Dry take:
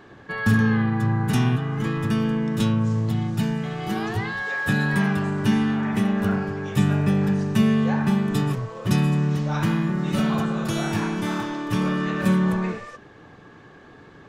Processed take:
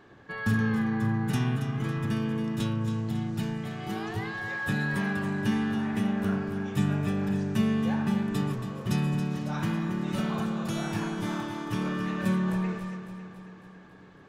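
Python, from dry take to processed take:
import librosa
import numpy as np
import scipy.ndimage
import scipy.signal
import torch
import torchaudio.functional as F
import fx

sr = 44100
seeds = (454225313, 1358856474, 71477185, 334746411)

y = fx.echo_feedback(x, sr, ms=276, feedback_pct=57, wet_db=-10.0)
y = y * librosa.db_to_amplitude(-7.0)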